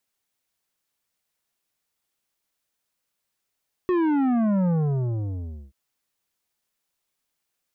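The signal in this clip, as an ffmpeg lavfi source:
ffmpeg -f lavfi -i "aevalsrc='0.1*clip((1.83-t)/1.04,0,1)*tanh(3.35*sin(2*PI*370*1.83/log(65/370)*(exp(log(65/370)*t/1.83)-1)))/tanh(3.35)':duration=1.83:sample_rate=44100" out.wav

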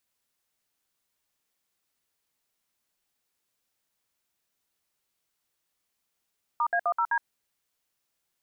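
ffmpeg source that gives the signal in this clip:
ffmpeg -f lavfi -i "aevalsrc='0.0562*clip(min(mod(t,0.128),0.067-mod(t,0.128))/0.002,0,1)*(eq(floor(t/0.128),0)*(sin(2*PI*941*mod(t,0.128))+sin(2*PI*1209*mod(t,0.128)))+eq(floor(t/0.128),1)*(sin(2*PI*697*mod(t,0.128))+sin(2*PI*1633*mod(t,0.128)))+eq(floor(t/0.128),2)*(sin(2*PI*697*mod(t,0.128))+sin(2*PI*1209*mod(t,0.128)))+eq(floor(t/0.128),3)*(sin(2*PI*941*mod(t,0.128))+sin(2*PI*1336*mod(t,0.128)))+eq(floor(t/0.128),4)*(sin(2*PI*941*mod(t,0.128))+sin(2*PI*1633*mod(t,0.128))))':duration=0.64:sample_rate=44100" out.wav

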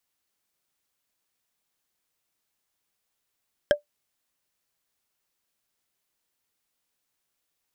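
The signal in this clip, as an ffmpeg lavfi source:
ffmpeg -f lavfi -i "aevalsrc='0.282*pow(10,-3*t/0.12)*sin(2*PI*588*t)+0.168*pow(10,-3*t/0.036)*sin(2*PI*1621.1*t)+0.1*pow(10,-3*t/0.016)*sin(2*PI*3177.6*t)+0.0596*pow(10,-3*t/0.009)*sin(2*PI*5252.6*t)+0.0355*pow(10,-3*t/0.005)*sin(2*PI*7843.9*t)':duration=0.45:sample_rate=44100" out.wav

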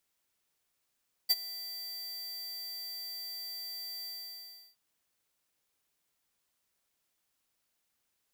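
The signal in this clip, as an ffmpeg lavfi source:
ffmpeg -f lavfi -i "aevalsrc='0.0708*(2*lt(mod(4680*t,1),0.5)-1)':duration=3.467:sample_rate=44100,afade=type=in:duration=0.019,afade=type=out:start_time=0.019:duration=0.035:silence=0.119,afade=type=out:start_time=2.76:duration=0.707" out.wav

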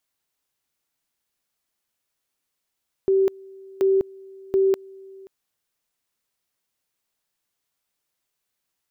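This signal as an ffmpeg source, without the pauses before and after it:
ffmpeg -f lavfi -i "aevalsrc='pow(10,(-15-25*gte(mod(t,0.73),0.2))/20)*sin(2*PI*386*t)':duration=2.19:sample_rate=44100" out.wav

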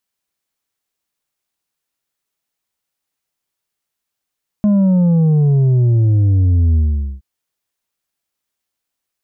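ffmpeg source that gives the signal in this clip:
ffmpeg -f lavfi -i "aevalsrc='0.316*clip((2.57-t)/0.45,0,1)*tanh(1.78*sin(2*PI*210*2.57/log(65/210)*(exp(log(65/210)*t/2.57)-1)))/tanh(1.78)':duration=2.57:sample_rate=44100" out.wav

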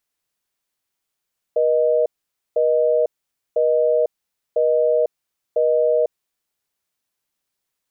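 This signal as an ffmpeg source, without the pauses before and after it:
ffmpeg -f lavfi -i "aevalsrc='0.141*(sin(2*PI*480*t)+sin(2*PI*620*t))*clip(min(mod(t,1),0.5-mod(t,1))/0.005,0,1)':duration=4.8:sample_rate=44100" out.wav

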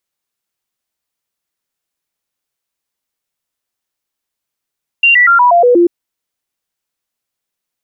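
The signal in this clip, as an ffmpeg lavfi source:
ffmpeg -f lavfi -i "aevalsrc='0.596*clip(min(mod(t,0.12),0.12-mod(t,0.12))/0.005,0,1)*sin(2*PI*2770*pow(2,-floor(t/0.12)/2)*mod(t,0.12))':duration=0.84:sample_rate=44100" out.wav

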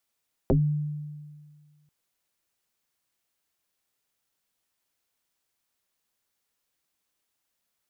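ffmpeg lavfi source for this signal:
ffmpeg -f lavfi -i "aevalsrc='0.158*pow(10,-3*t/1.79)*sin(2*PI*149*t+4.9*pow(10,-3*t/0.17)*sin(2*PI*0.84*149*t))':duration=1.39:sample_rate=44100" out.wav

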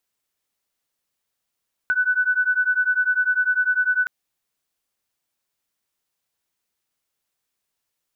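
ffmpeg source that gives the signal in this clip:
ffmpeg -f lavfi -i "aevalsrc='0.0944*(sin(2*PI*1490*t)+sin(2*PI*1500*t))':duration=2.17:sample_rate=44100" out.wav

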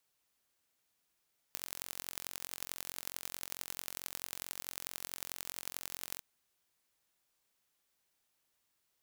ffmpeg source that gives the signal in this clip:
ffmpeg -f lavfi -i "aevalsrc='0.282*eq(mod(n,989),0)*(0.5+0.5*eq(mod(n,3956),0))':duration=4.66:sample_rate=44100" out.wav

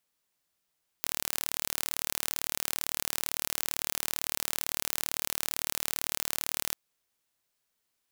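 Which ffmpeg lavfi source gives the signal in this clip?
ffmpeg -f lavfi -i "aevalsrc='0.668*eq(mod(n,1167),0)':duration=5.7:sample_rate=44100" out.wav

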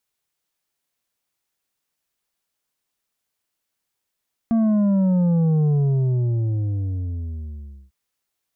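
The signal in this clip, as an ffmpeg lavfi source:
ffmpeg -f lavfi -i "aevalsrc='0.158*clip((3.4-t)/2.25,0,1)*tanh(2.11*sin(2*PI*230*3.4/log(65/230)*(exp(log(65/230)*t/3.4)-1)))/tanh(2.11)':duration=3.4:sample_rate=44100" out.wav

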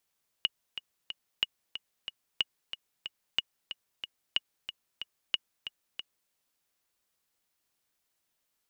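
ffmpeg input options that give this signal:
ffmpeg -f lavfi -i "aevalsrc='pow(10,(-12.5-11*gte(mod(t,3*60/184),60/184))/20)*sin(2*PI*2890*mod(t,60/184))*exp(-6.91*mod(t,60/184)/0.03)':duration=5.86:sample_rate=44100" out.wav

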